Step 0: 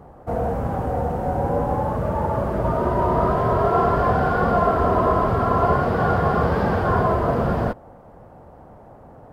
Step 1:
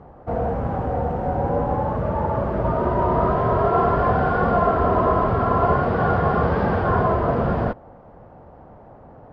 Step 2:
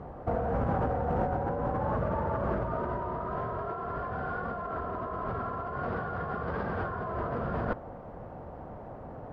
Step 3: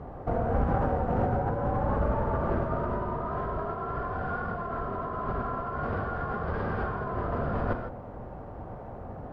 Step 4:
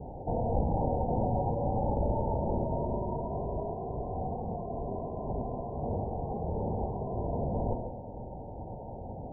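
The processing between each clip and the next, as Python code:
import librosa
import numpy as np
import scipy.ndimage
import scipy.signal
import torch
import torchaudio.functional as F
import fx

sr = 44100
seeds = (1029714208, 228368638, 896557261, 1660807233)

y1 = scipy.signal.sosfilt(scipy.signal.butter(2, 3700.0, 'lowpass', fs=sr, output='sos'), x)
y2 = fx.notch(y1, sr, hz=840.0, q=22.0)
y2 = fx.dynamic_eq(y2, sr, hz=1400.0, q=1.7, threshold_db=-37.0, ratio=4.0, max_db=5)
y2 = fx.over_compress(y2, sr, threshold_db=-27.0, ratio=-1.0)
y2 = y2 * 10.0 ** (-5.5 / 20.0)
y3 = fx.octave_divider(y2, sr, octaves=1, level_db=0.0)
y3 = fx.rev_gated(y3, sr, seeds[0], gate_ms=180, shape='flat', drr_db=4.0)
y4 = np.minimum(y3, 2.0 * 10.0 ** (-25.5 / 20.0) - y3)
y4 = scipy.signal.sosfilt(scipy.signal.cheby1(8, 1.0, 940.0, 'lowpass', fs=sr, output='sos'), y4)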